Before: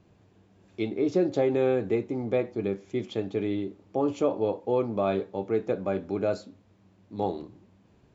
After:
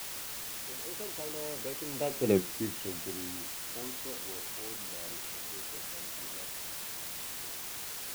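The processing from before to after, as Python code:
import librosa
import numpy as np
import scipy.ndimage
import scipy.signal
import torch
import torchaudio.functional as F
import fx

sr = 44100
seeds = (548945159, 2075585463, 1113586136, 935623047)

p1 = fx.doppler_pass(x, sr, speed_mps=47, closest_m=4.2, pass_at_s=2.34)
p2 = fx.quant_dither(p1, sr, seeds[0], bits=6, dither='triangular')
y = p1 + (p2 * 10.0 ** (-4.5 / 20.0))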